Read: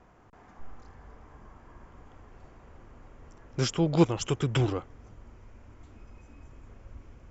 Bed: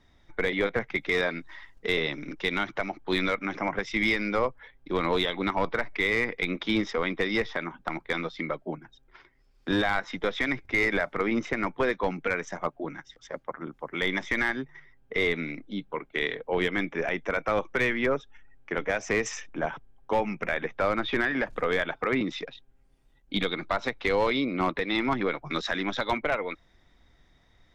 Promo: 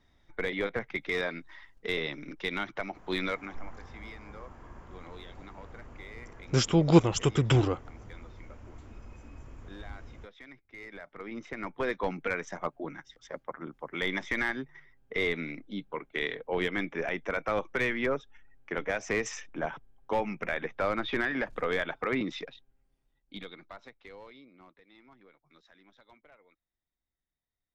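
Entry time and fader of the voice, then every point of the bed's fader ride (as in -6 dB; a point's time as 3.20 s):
2.95 s, +2.5 dB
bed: 3.37 s -5 dB
3.71 s -22.5 dB
10.75 s -22.5 dB
11.96 s -3.5 dB
22.41 s -3.5 dB
24.80 s -31.5 dB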